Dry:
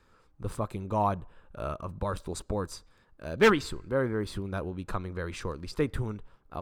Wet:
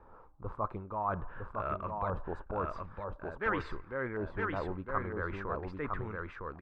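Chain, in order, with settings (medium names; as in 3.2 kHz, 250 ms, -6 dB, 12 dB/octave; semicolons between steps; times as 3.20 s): fade out at the end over 1.98 s; peaking EQ 160 Hz -5.5 dB 2.7 oct; reverse; compression 6:1, threshold -44 dBFS, peak gain reduction 23.5 dB; reverse; LFO low-pass saw up 0.48 Hz 820–2200 Hz; on a send: delay 958 ms -3.5 dB; on the sum: trim +8 dB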